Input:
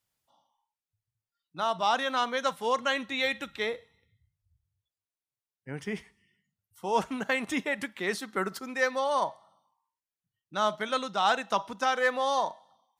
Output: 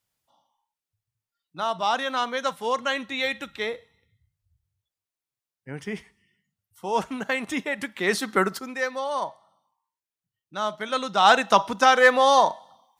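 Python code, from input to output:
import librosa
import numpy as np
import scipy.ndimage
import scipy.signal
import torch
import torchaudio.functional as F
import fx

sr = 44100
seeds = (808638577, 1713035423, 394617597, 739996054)

y = fx.gain(x, sr, db=fx.line((7.75, 2.0), (8.31, 10.5), (8.84, -0.5), (10.75, -0.5), (11.35, 10.0)))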